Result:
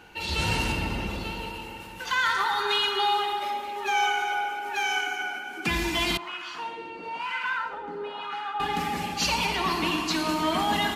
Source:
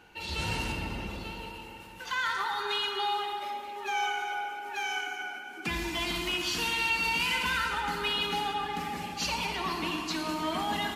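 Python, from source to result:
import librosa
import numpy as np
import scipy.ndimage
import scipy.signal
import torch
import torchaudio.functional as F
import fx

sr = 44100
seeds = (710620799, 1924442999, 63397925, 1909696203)

y = fx.wah_lfo(x, sr, hz=1.0, low_hz=400.0, high_hz=1400.0, q=2.3, at=(6.17, 8.6))
y = F.gain(torch.from_numpy(y), 6.0).numpy()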